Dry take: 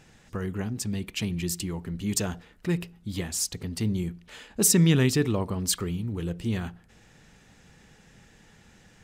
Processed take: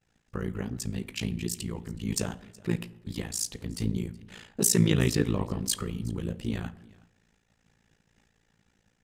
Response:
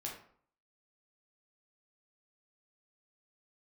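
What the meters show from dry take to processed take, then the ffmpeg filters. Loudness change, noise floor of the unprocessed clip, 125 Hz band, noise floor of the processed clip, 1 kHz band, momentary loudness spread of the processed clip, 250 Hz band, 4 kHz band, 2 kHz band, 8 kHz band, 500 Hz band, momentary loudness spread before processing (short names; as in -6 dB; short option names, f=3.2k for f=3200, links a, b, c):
-3.0 dB, -57 dBFS, -3.0 dB, -72 dBFS, -2.5 dB, 14 LU, -3.0 dB, -3.0 dB, -3.0 dB, -3.0 dB, -2.5 dB, 14 LU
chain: -filter_complex "[0:a]agate=range=-33dB:threshold=-46dB:ratio=3:detection=peak,flanger=delay=1.5:depth=9.8:regen=-52:speed=1.2:shape=sinusoidal,tremolo=f=56:d=0.947,aecho=1:1:371:0.0668,asplit=2[a][b];[1:a]atrim=start_sample=2205,asetrate=26460,aresample=44100[c];[b][c]afir=irnorm=-1:irlink=0,volume=-17.5dB[d];[a][d]amix=inputs=2:normalize=0,volume=4.5dB"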